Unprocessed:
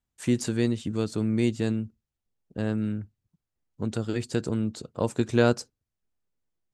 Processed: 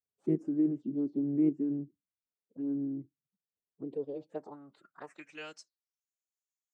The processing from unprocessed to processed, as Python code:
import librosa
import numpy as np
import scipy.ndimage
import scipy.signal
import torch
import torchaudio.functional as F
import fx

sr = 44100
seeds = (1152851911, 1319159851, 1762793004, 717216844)

p1 = fx.level_steps(x, sr, step_db=12)
p2 = x + (p1 * librosa.db_to_amplitude(0.5))
p3 = fx.env_phaser(p2, sr, low_hz=250.0, high_hz=3700.0, full_db=-18.5)
p4 = fx.filter_sweep_bandpass(p3, sr, from_hz=320.0, to_hz=6800.0, start_s=3.74, end_s=6.07, q=7.3)
p5 = fx.pitch_keep_formants(p4, sr, semitones=4.5)
y = p5 * librosa.db_to_amplitude(2.0)